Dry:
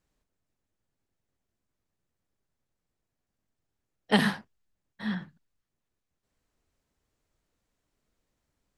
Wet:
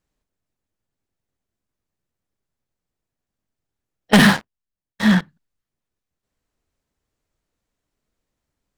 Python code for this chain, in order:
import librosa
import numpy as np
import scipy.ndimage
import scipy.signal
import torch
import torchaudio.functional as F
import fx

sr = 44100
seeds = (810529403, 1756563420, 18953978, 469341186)

y = fx.leveller(x, sr, passes=5, at=(4.13, 5.21))